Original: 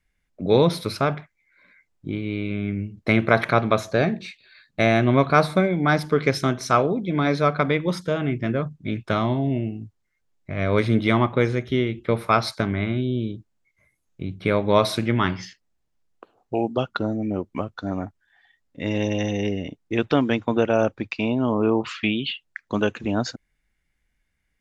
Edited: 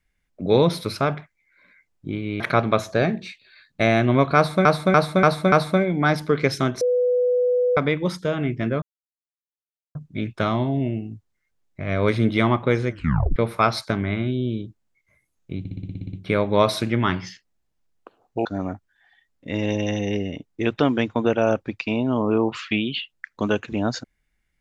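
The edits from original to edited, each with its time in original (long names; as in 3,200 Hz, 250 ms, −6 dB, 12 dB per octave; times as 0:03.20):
0:02.40–0:03.39: remove
0:05.35–0:05.64: repeat, 5 plays
0:06.64–0:07.60: beep over 495 Hz −16.5 dBFS
0:08.65: splice in silence 1.13 s
0:11.59: tape stop 0.47 s
0:14.29: stutter 0.06 s, 10 plays
0:16.61–0:17.77: remove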